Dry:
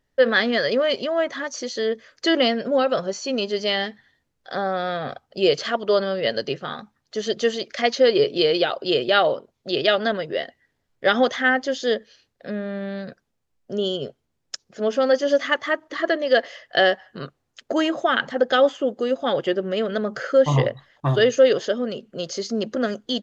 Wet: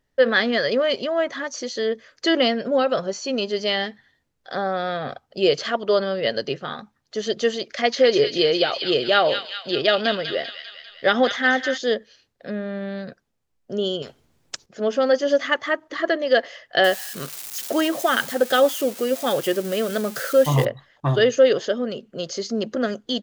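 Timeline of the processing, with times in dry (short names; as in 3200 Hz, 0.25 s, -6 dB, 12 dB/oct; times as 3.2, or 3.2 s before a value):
7.73–11.78 thin delay 0.198 s, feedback 60%, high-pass 2200 Hz, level -3.5 dB
14.02–14.66 spectral compressor 2:1
16.84–20.65 switching spikes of -22 dBFS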